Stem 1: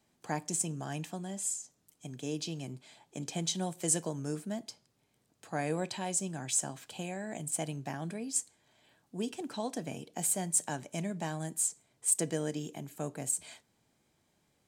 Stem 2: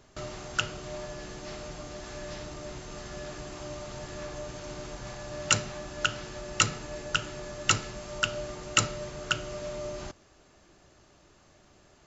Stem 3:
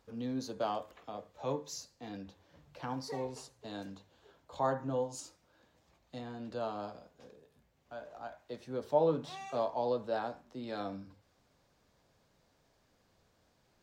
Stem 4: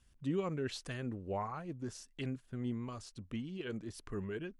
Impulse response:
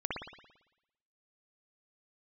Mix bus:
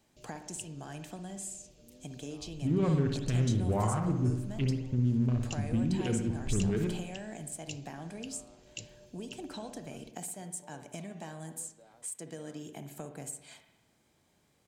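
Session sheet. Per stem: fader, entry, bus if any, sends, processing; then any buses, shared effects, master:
+0.5 dB, 0.00 s, send -10.5 dB, compression 6:1, threshold -42 dBFS, peak gain reduction 18.5 dB
-18.0 dB, 0.00 s, no send, elliptic band-stop 590–2500 Hz
-19.0 dB, 1.70 s, no send, compression, threshold -37 dBFS, peak gain reduction 14 dB
+2.5 dB, 2.40 s, send -3.5 dB, local Wiener filter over 41 samples; tone controls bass +10 dB, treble -2 dB; peak limiter -28 dBFS, peak gain reduction 8.5 dB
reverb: on, RT60 0.90 s, pre-delay 56 ms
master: none

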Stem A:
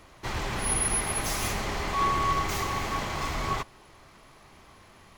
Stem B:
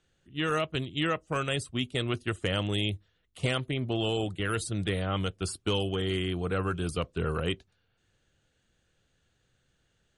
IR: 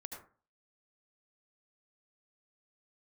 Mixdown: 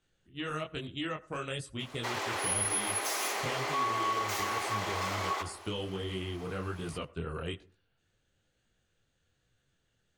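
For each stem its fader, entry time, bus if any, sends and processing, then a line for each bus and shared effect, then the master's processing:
+2.0 dB, 1.80 s, send -4.5 dB, high-pass 350 Hz 24 dB/octave
-1.0 dB, 0.00 s, send -16 dB, detune thickener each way 40 cents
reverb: on, RT60 0.40 s, pre-delay 67 ms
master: compression 2:1, threshold -35 dBFS, peak gain reduction 9 dB

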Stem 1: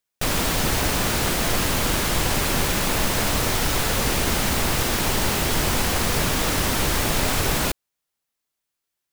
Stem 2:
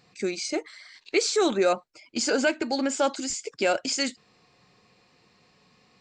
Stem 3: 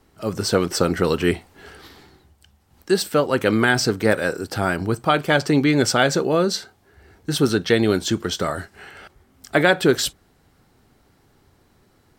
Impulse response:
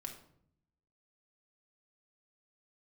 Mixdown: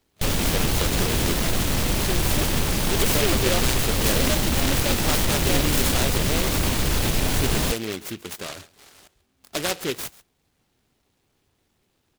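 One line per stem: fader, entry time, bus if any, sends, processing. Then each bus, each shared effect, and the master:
-0.5 dB, 0.00 s, no send, no echo send, peak limiter -14 dBFS, peak gain reduction 5 dB
-5.5 dB, 1.85 s, no send, no echo send, treble shelf 3.5 kHz +11.5 dB
-8.5 dB, 0.00 s, no send, echo send -20 dB, bass shelf 350 Hz -10.5 dB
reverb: none
echo: delay 137 ms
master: bass shelf 280 Hz +5.5 dB; delay time shaken by noise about 2.6 kHz, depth 0.18 ms

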